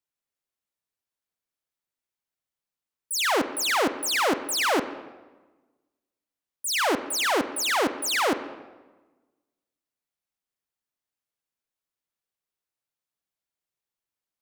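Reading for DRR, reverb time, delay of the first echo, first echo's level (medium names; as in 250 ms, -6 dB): 10.5 dB, 1.2 s, no echo, no echo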